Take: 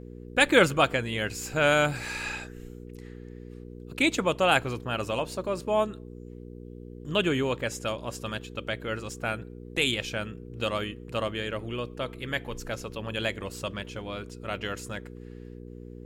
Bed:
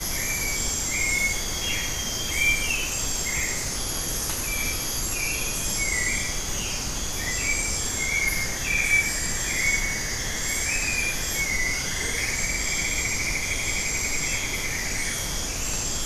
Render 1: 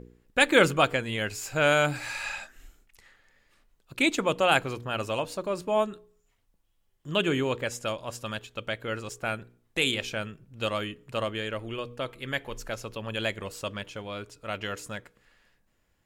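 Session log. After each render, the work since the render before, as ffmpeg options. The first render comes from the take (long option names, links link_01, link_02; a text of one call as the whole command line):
ffmpeg -i in.wav -af "bandreject=frequency=60:width_type=h:width=4,bandreject=frequency=120:width_type=h:width=4,bandreject=frequency=180:width_type=h:width=4,bandreject=frequency=240:width_type=h:width=4,bandreject=frequency=300:width_type=h:width=4,bandreject=frequency=360:width_type=h:width=4,bandreject=frequency=420:width_type=h:width=4,bandreject=frequency=480:width_type=h:width=4" out.wav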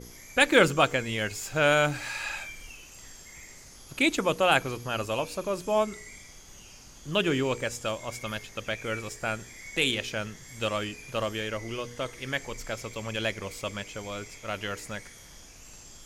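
ffmpeg -i in.wav -i bed.wav -filter_complex "[1:a]volume=-21dB[link_01];[0:a][link_01]amix=inputs=2:normalize=0" out.wav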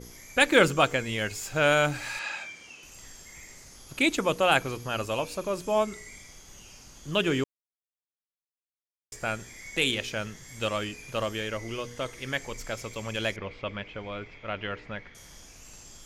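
ffmpeg -i in.wav -filter_complex "[0:a]asettb=1/sr,asplit=3[link_01][link_02][link_03];[link_01]atrim=end=2.194[link_04];[link_02]atrim=start=2.19:end=2.83,asetpts=PTS-STARTPTS,afade=type=in:duration=0.004:curve=qsin,afade=type=out:start_time=0.636:duration=0.004:curve=qsin,highpass=180,lowpass=6300[link_05];[link_03]atrim=start=2.826[link_06];[link_04][link_05]acrossfade=duration=0.004:curve1=hsin:curve2=qsin[link_07];[link_07][link_06]acrossfade=duration=0.004:curve1=qsin:curve2=hsin,asettb=1/sr,asplit=3[link_08][link_09][link_10];[link_08]atrim=end=13.364[link_11];[link_09]atrim=start=13.36:end=15.15,asetpts=PTS-STARTPTS,afade=type=in:duration=0.004:curve=qsin,afade=type=out:start_time=1.786:duration=0.004:curve=qsin,lowpass=frequency=3300:width=0.5412,lowpass=frequency=3300:width=1.3066[link_12];[link_10]atrim=start=15.146[link_13];[link_11][link_12]acrossfade=duration=0.004:curve1=hsin:curve2=qsin[link_14];[link_14][link_13]acrossfade=duration=0.004:curve1=qsin:curve2=hsin,asplit=3[link_15][link_16][link_17];[link_15]atrim=end=7.44,asetpts=PTS-STARTPTS,afade=type=out:start_time=7.436:duration=0.004:curve=hsin[link_18];[link_16]atrim=start=7.44:end=9.12,asetpts=PTS-STARTPTS,volume=0[link_19];[link_17]atrim=start=9.12,asetpts=PTS-STARTPTS,afade=type=in:duration=0.004:curve=hsin[link_20];[link_18][link_19][link_20]concat=n=3:v=0:a=1" out.wav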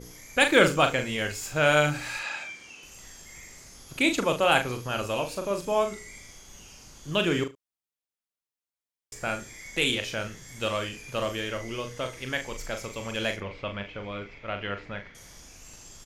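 ffmpeg -i in.wav -filter_complex "[0:a]asplit=2[link_01][link_02];[link_02]adelay=40,volume=-7dB[link_03];[link_01][link_03]amix=inputs=2:normalize=0,aecho=1:1:73:0.112" out.wav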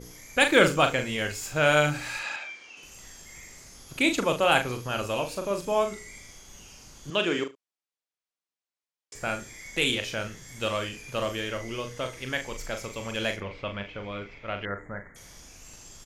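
ffmpeg -i in.wav -filter_complex "[0:a]asettb=1/sr,asplit=3[link_01][link_02][link_03];[link_01]atrim=end=2.364[link_04];[link_02]atrim=start=2.36:end=2.77,asetpts=PTS-STARTPTS,afade=type=in:duration=0.004:curve=qsin,afade=type=out:start_time=0.406:duration=0.004:curve=qsin,acrossover=split=330 6200:gain=0.224 1 0.126[link_05][link_06][link_07];[link_05][link_06][link_07]amix=inputs=3:normalize=0[link_08];[link_03]atrim=start=2.766[link_09];[link_04][link_08]acrossfade=duration=0.004:curve1=hsin:curve2=qsin[link_10];[link_10][link_09]acrossfade=duration=0.004:curve1=qsin:curve2=hsin,asettb=1/sr,asplit=3[link_11][link_12][link_13];[link_11]atrim=end=7.104[link_14];[link_12]atrim=start=7.1:end=9.15,asetpts=PTS-STARTPTS,afade=type=in:duration=0.004:curve=qsin,afade=type=out:start_time=2.046:duration=0.004:curve=qsin,highpass=260,lowpass=7300[link_15];[link_13]atrim=start=9.146[link_16];[link_14][link_15]acrossfade=duration=0.004:curve1=hsin:curve2=qsin[link_17];[link_17][link_16]acrossfade=duration=0.004:curve1=qsin:curve2=hsin,asettb=1/sr,asplit=3[link_18][link_19][link_20];[link_18]atrim=end=14.654[link_21];[link_19]atrim=start=14.65:end=15.16,asetpts=PTS-STARTPTS,afade=type=in:duration=0.004:curve=qsin,afade=type=out:start_time=0.506:duration=0.004:curve=qsin,asuperstop=centerf=3800:order=20:qfactor=0.8[link_22];[link_20]atrim=start=15.156[link_23];[link_21][link_22]acrossfade=duration=0.004:curve1=hsin:curve2=qsin[link_24];[link_24][link_23]acrossfade=duration=0.004:curve1=qsin:curve2=hsin" out.wav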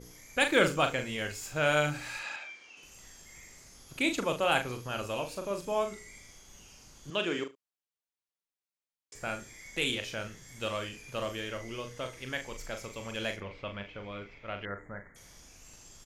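ffmpeg -i in.wav -af "volume=-5.5dB" out.wav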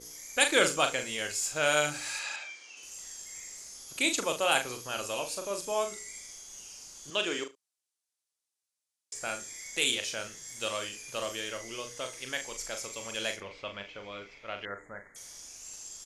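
ffmpeg -i in.wav -af "lowpass=frequency=11000:width=0.5412,lowpass=frequency=11000:width=1.3066,bass=frequency=250:gain=-10,treble=frequency=4000:gain=12" out.wav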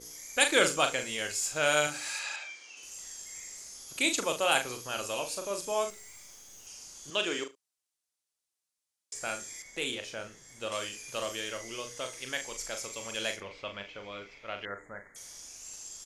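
ffmpeg -i in.wav -filter_complex "[0:a]asettb=1/sr,asplit=3[link_01][link_02][link_03];[link_01]atrim=end=1.874[link_04];[link_02]atrim=start=1.87:end=2.5,asetpts=PTS-STARTPTS,afade=type=in:duration=0.004:curve=qsin,afade=type=out:start_time=0.626:duration=0.004:curve=qsin,highpass=frequency=250:poles=1[link_05];[link_03]atrim=start=2.496[link_06];[link_04][link_05]acrossfade=duration=0.004:curve1=hsin:curve2=qsin[link_07];[link_07][link_06]acrossfade=duration=0.004:curve1=qsin:curve2=hsin,asettb=1/sr,asplit=3[link_08][link_09][link_10];[link_08]atrim=end=5.904[link_11];[link_09]atrim=start=5.9:end=6.67,asetpts=PTS-STARTPTS,afade=type=in:duration=0.004:curve=qsin,afade=type=out:start_time=0.766:duration=0.004:curve=qsin,aeval=exprs='(tanh(224*val(0)+0.7)-tanh(0.7))/224':channel_layout=same[link_12];[link_10]atrim=start=6.666[link_13];[link_11][link_12]acrossfade=duration=0.004:curve1=hsin:curve2=qsin[link_14];[link_14][link_13]acrossfade=duration=0.004:curve1=qsin:curve2=hsin,asettb=1/sr,asplit=3[link_15][link_16][link_17];[link_15]atrim=end=9.624[link_18];[link_16]atrim=start=9.62:end=10.72,asetpts=PTS-STARTPTS,afade=type=in:duration=0.004:curve=qsin,afade=type=out:start_time=1.096:duration=0.004:curve=qsin,highshelf=frequency=2500:gain=-11.5[link_19];[link_17]atrim=start=10.716[link_20];[link_18][link_19]acrossfade=duration=0.004:curve1=hsin:curve2=qsin[link_21];[link_21][link_20]acrossfade=duration=0.004:curve1=qsin:curve2=hsin" out.wav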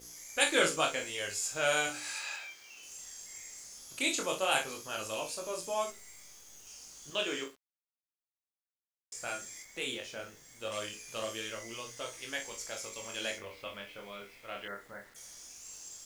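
ffmpeg -i in.wav -af "flanger=delay=17.5:depth=7.7:speed=0.17,acrusher=bits=9:mix=0:aa=0.000001" out.wav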